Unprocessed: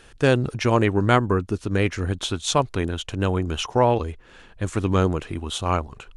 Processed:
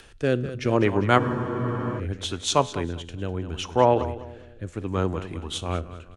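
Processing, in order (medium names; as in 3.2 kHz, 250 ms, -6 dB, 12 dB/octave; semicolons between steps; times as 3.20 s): on a send: feedback delay 201 ms, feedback 41%, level -12 dB; on the sum: rotary cabinet horn 0.7 Hz; treble shelf 4.5 kHz -6 dB; feedback comb 85 Hz, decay 0.58 s, harmonics all, mix 40%; in parallel at +2 dB: upward compressor, threshold -26 dBFS; on the sum: bass shelf 180 Hz -4 dB; spectral freeze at 1.21 s, 0.78 s; three bands expanded up and down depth 40%; trim -4.5 dB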